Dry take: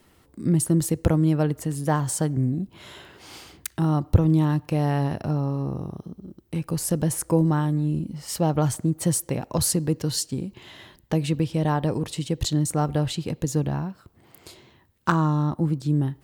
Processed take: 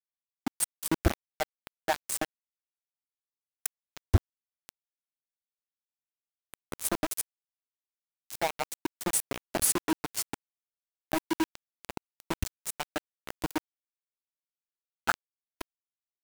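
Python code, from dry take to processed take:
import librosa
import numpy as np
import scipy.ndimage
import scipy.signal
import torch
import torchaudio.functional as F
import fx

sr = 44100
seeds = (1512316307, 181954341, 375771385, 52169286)

y = fx.hpss_only(x, sr, part='percussive')
y = fx.fixed_phaser(y, sr, hz=720.0, stages=8)
y = np.where(np.abs(y) >= 10.0 ** (-25.0 / 20.0), y, 0.0)
y = y * librosa.db_to_amplitude(1.5)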